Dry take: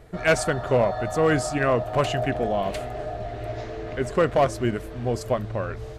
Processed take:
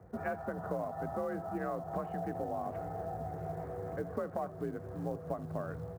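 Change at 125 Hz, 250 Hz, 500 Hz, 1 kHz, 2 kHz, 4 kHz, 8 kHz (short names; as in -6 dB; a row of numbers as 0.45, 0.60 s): -13.5 dB, -12.0 dB, -14.5 dB, -11.5 dB, -19.5 dB, under -30 dB, under -25 dB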